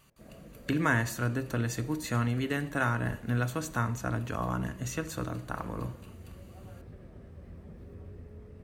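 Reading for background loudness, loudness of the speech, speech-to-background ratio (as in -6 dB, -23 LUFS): -50.5 LUFS, -32.0 LUFS, 18.5 dB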